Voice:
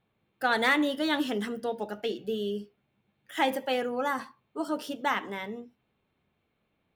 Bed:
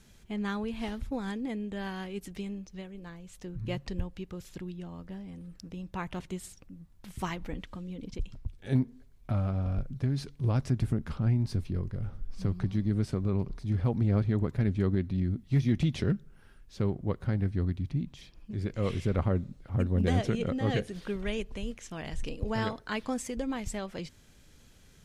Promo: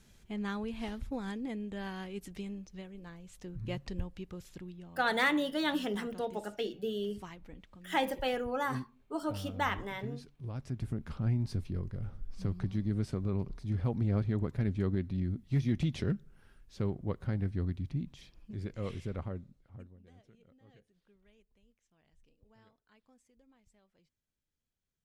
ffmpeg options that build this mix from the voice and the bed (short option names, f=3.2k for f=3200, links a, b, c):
-filter_complex "[0:a]adelay=4550,volume=-4dB[a];[1:a]volume=5.5dB,afade=t=out:st=4.34:d=0.82:silence=0.334965,afade=t=in:st=10.53:d=0.73:silence=0.354813,afade=t=out:st=18.24:d=1.74:silence=0.0354813[b];[a][b]amix=inputs=2:normalize=0"